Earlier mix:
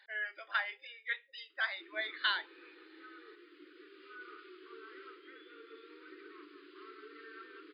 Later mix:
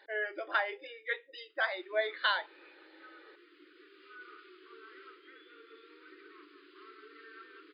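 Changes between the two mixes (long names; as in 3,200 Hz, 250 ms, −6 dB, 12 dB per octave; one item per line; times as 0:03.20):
speech: remove high-pass filter 1,500 Hz 12 dB per octave
master: add low-shelf EQ 500 Hz −4.5 dB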